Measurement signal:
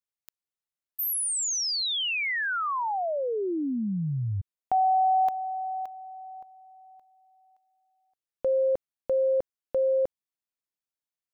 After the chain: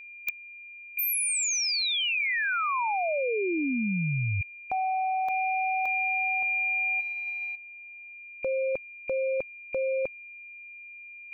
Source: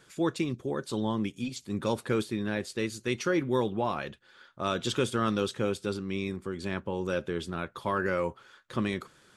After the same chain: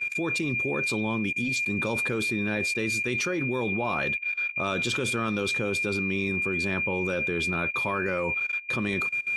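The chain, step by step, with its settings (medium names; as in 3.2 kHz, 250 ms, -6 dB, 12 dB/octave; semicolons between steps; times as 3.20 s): whistle 2.4 kHz -33 dBFS; level held to a coarse grid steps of 18 dB; trim +8.5 dB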